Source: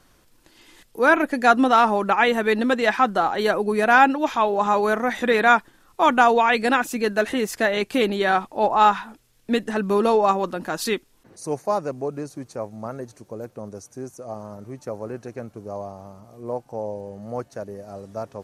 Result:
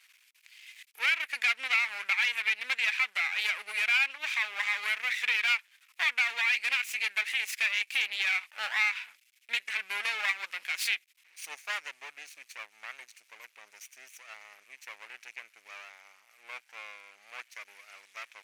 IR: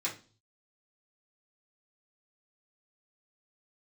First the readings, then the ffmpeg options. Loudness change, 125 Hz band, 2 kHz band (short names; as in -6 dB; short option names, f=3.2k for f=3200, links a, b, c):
-8.0 dB, under -40 dB, -3.5 dB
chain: -af "aeval=exprs='max(val(0),0)':c=same,highpass=f=2.3k:t=q:w=4.2,acompressor=threshold=-27dB:ratio=2.5"